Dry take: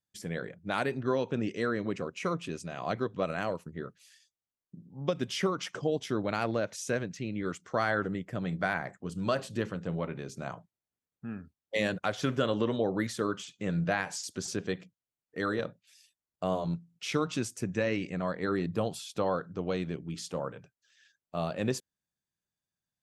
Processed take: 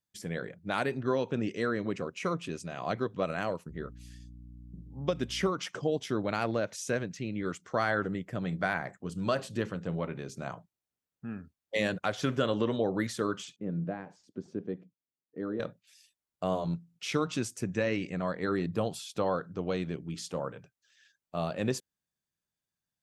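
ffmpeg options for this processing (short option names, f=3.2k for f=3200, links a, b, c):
-filter_complex "[0:a]asettb=1/sr,asplit=3[a][b][c];[a]atrim=end=3.694[d];[b]atrim=start=3.69:end=5.49,asetpts=PTS-STARTPTS,afade=t=in:d=0.004:c=qsin,afade=t=out:st=1.796:d=0.004:c=qsin,aeval=exprs='val(0)+0.00447*(sin(2*PI*60*n/s)+sin(2*PI*2*60*n/s)/2+sin(2*PI*3*60*n/s)/3+sin(2*PI*4*60*n/s)/4+sin(2*PI*5*60*n/s)/5)':c=same[e];[c]atrim=start=5.486[f];[d][e]acrossfade=d=0.004:c1=hsin:c2=qsin[g];[g][f]acrossfade=d=0.004:c1=qsin:c2=hsin,asettb=1/sr,asplit=3[h][i][j];[h]atrim=end=13.564[k];[i]atrim=start=13.56:end=15.6,asetpts=PTS-STARTPTS,afade=t=in:d=0.004:c=qsin,afade=t=out:st=2.036:d=0.004:c=qsin,bandpass=f=270:t=q:w=1.1[l];[j]atrim=start=15.596[m];[k][l]acrossfade=d=0.004:c1=hsin:c2=qsin[n];[n][m]acrossfade=d=0.004:c1=qsin:c2=hsin"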